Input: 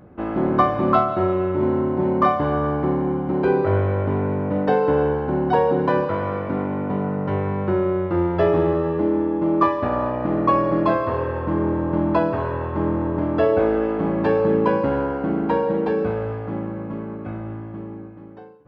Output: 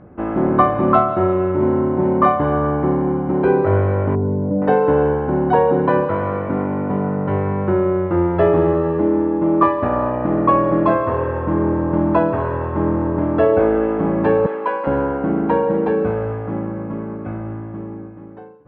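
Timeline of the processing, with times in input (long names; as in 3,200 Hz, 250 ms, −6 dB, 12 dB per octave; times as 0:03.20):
0:04.15–0:04.62: expanding power law on the bin magnitudes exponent 1.8
0:14.46–0:14.87: high-pass filter 730 Hz
whole clip: low-pass filter 2,300 Hz 12 dB per octave; level +3.5 dB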